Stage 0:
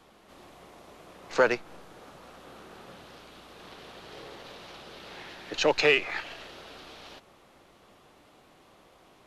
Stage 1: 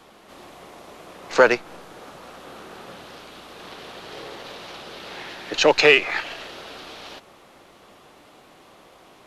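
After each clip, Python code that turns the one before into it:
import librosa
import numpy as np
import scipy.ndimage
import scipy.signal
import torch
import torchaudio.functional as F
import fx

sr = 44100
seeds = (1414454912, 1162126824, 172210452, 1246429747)

y = fx.low_shelf(x, sr, hz=140.0, db=-6.5)
y = y * 10.0 ** (8.0 / 20.0)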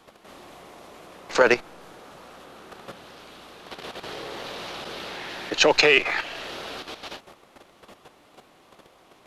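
y = fx.level_steps(x, sr, step_db=10)
y = y * 10.0 ** (4.0 / 20.0)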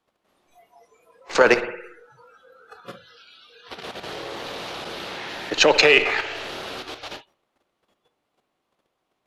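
y = fx.rev_spring(x, sr, rt60_s=1.0, pass_ms=(56,), chirp_ms=55, drr_db=10.5)
y = fx.noise_reduce_blind(y, sr, reduce_db=23)
y = y * 10.0 ** (2.0 / 20.0)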